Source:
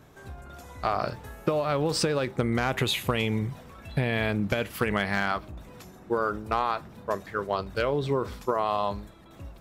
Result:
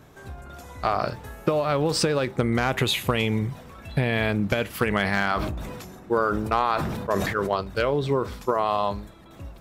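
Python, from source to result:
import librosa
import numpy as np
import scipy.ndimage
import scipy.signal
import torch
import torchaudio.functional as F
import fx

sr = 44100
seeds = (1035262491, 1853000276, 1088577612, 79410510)

y = fx.sustainer(x, sr, db_per_s=32.0, at=(4.99, 7.54))
y = y * 10.0 ** (3.0 / 20.0)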